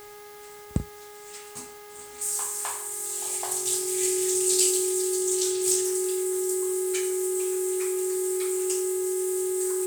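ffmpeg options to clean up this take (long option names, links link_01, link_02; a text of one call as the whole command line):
ffmpeg -i in.wav -af "bandreject=frequency=414.7:width_type=h:width=4,bandreject=frequency=829.4:width_type=h:width=4,bandreject=frequency=1244.1:width_type=h:width=4,bandreject=frequency=1658.8:width_type=h:width=4,bandreject=frequency=2073.5:width_type=h:width=4,bandreject=frequency=370:width=30,afwtdn=0.0028" out.wav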